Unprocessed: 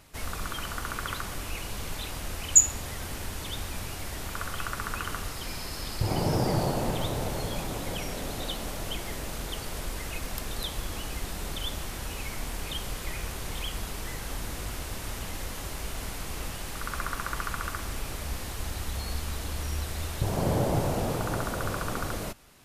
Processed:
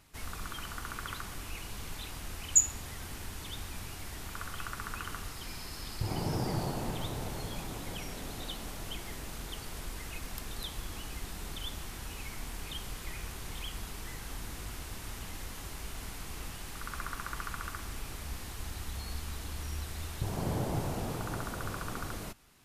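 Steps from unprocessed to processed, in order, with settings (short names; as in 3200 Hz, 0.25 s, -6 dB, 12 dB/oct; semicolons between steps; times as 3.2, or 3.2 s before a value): bell 560 Hz -5.5 dB 0.56 oct; gain -6 dB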